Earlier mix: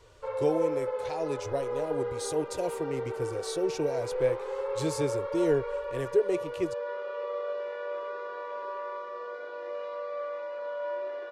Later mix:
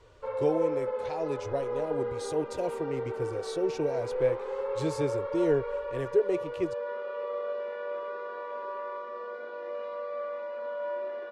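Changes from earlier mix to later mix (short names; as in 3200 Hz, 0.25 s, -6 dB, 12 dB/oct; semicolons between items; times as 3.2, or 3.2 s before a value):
background: add bell 230 Hz +14 dB 0.27 oct; master: add LPF 3400 Hz 6 dB/oct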